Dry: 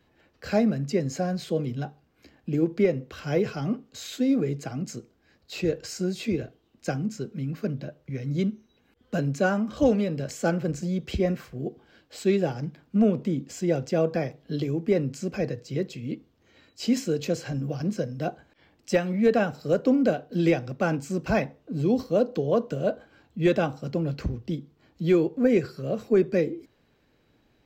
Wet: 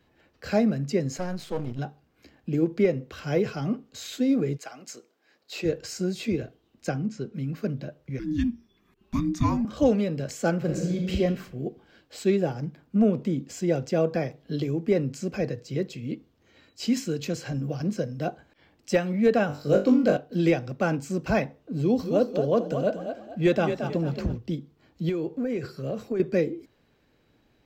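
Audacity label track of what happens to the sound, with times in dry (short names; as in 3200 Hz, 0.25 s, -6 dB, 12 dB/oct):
1.170000	1.790000	half-wave gain negative side -12 dB
4.560000	5.640000	HPF 810 Hz -> 270 Hz
6.890000	7.340000	air absorption 86 m
8.190000	9.650000	frequency shift -450 Hz
10.570000	11.140000	reverb throw, RT60 1.1 s, DRR 0.5 dB
12.300000	13.130000	bell 3800 Hz -3.5 dB 2.3 oct
16.840000	17.420000	bell 560 Hz -6.5 dB 1 oct
19.470000	20.170000	flutter echo walls apart 3.5 m, dies away in 0.31 s
21.800000	24.370000	frequency-shifting echo 0.223 s, feedback 33%, per repeat +38 Hz, level -8 dB
25.090000	26.200000	compressor 10:1, threshold -24 dBFS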